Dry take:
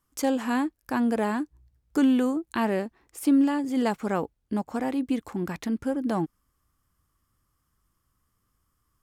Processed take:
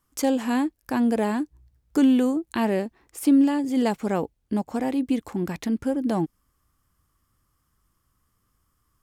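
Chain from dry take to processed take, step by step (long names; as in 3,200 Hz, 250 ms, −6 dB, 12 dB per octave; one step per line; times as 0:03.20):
dynamic equaliser 1,300 Hz, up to −6 dB, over −46 dBFS, Q 1.5
level +3 dB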